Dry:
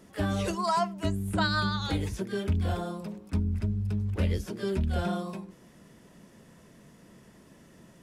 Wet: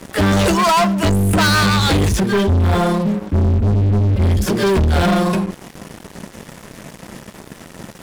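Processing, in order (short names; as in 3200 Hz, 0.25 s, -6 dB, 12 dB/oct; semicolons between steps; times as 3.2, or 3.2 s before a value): 2.2–4.42 median-filter separation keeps harmonic; sample leveller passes 5; gain +4.5 dB; Vorbis 192 kbps 44100 Hz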